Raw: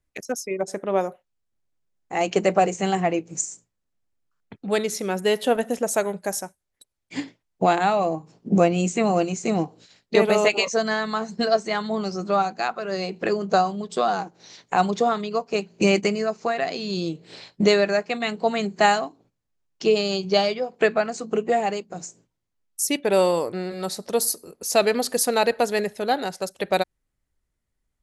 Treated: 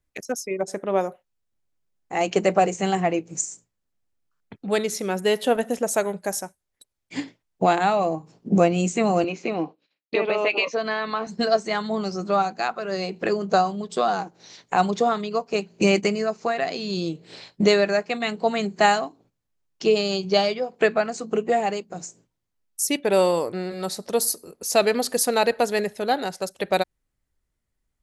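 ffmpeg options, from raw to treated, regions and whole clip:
-filter_complex "[0:a]asettb=1/sr,asplit=3[s0][s1][s2];[s0]atrim=end=9.244[s3];[s1]atrim=start=9.24:end=11.27,asetpts=PTS-STARTPTS,afade=t=in:d=0.004:c=qsin,afade=t=out:st=2.026:d=0.004:c=qsin,agate=range=0.0224:threshold=0.00891:ratio=3:release=100:detection=peak,acompressor=threshold=0.0631:ratio=2:attack=3.2:release=140:knee=1:detection=peak,highpass=f=160:w=0.5412,highpass=f=160:w=1.3066,equalizer=f=200:t=q:w=4:g=-7,equalizer=f=300:t=q:w=4:g=6,equalizer=f=540:t=q:w=4:g=4,equalizer=f=1100:t=q:w=4:g=4,equalizer=f=2500:t=q:w=4:g=8,lowpass=f=4500:w=0.5412,lowpass=f=4500:w=1.3066[s4];[s2]atrim=start=11.266[s5];[s3][s4]acrossfade=d=0.004:c1=hsin:c2=qsin[s6];[s6][s5]acrossfade=d=0.004:c1=qsin:c2=hsin"

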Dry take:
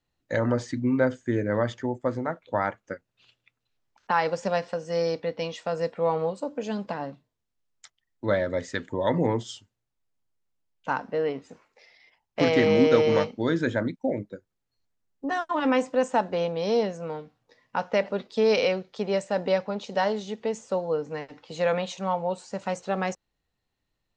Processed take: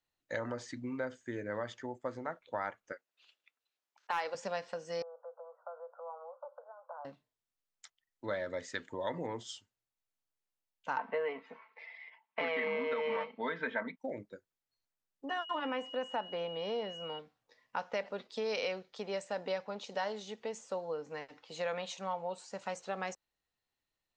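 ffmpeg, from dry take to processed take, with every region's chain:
-filter_complex "[0:a]asettb=1/sr,asplit=3[s0][s1][s2];[s0]atrim=end=2.924[s3];[s1]atrim=start=2.92:end=4.35,asetpts=PTS-STARTPTS,afade=t=in:d=0.004:c=qsin,afade=t=out:st=1.426:d=0.004:c=qsin,highpass=370,aeval=exprs='clip(val(0),-1,0.133)':c=same[s4];[s2]atrim=start=4.346[s5];[s3][s4]acrossfade=d=0.004:c1=hsin:c2=qsin[s6];[s6][s5]acrossfade=d=0.004:c1=qsin:c2=hsin,asettb=1/sr,asplit=3[s7][s8][s9];[s7]atrim=end=5.024[s10];[s8]atrim=start=5.02:end=7.05,asetpts=PTS-STARTPTS,afade=t=in:d=0.004:c=qsin,afade=t=out:st=2.026:d=0.004:c=qsin,acompressor=threshold=0.0282:ratio=5:attack=3.2:release=140:knee=1:detection=peak,asuperpass=centerf=860:order=20:qfactor=0.89[s11];[s9]atrim=start=7.046[s12];[s10][s11]acrossfade=d=0.004:c1=hsin:c2=qsin[s13];[s13][s12]acrossfade=d=0.004:c1=qsin:c2=hsin,asettb=1/sr,asplit=3[s14][s15][s16];[s14]atrim=end=10.974[s17];[s15]atrim=start=10.97:end=13.98,asetpts=PTS-STARTPTS,afade=t=in:d=0.004:c=qsin,afade=t=out:st=3.006:d=0.004:c=qsin,aecho=1:1:4.5:0.6,atrim=end_sample=132741,acontrast=39,highpass=230,equalizer=f=350:t=q:w=4:g=-8,equalizer=f=1000:t=q:w=4:g=9,equalizer=f=2100:t=q:w=4:g=7,lowpass=f=3200:w=0.5412,lowpass=f=3200:w=1.3066[s18];[s16]atrim=start=13.976[s19];[s17][s18]acrossfade=d=0.004:c1=hsin:c2=qsin[s20];[s20][s19]acrossfade=d=0.004:c1=qsin:c2=hsin,asettb=1/sr,asplit=3[s21][s22][s23];[s21]atrim=end=15.294[s24];[s22]atrim=start=15.29:end=17.19,asetpts=PTS-STARTPTS,afade=t=in:d=0.004:c=qsin,afade=t=out:st=1.896:d=0.004:c=qsin,acrossover=split=3300[s25][s26];[s26]acompressor=threshold=0.00126:ratio=4:attack=1:release=60[s27];[s25][s27]amix=inputs=2:normalize=0,aeval=exprs='val(0)+0.0112*sin(2*PI*2900*n/s)':c=same[s28];[s23]atrim=start=17.186[s29];[s24][s28]acrossfade=d=0.004:c1=hsin:c2=qsin[s30];[s30][s29]acrossfade=d=0.004:c1=qsin:c2=hsin,alimiter=limit=0.237:level=0:latency=1:release=387,acompressor=threshold=0.0501:ratio=2,lowshelf=f=380:g=-11,volume=0.562"

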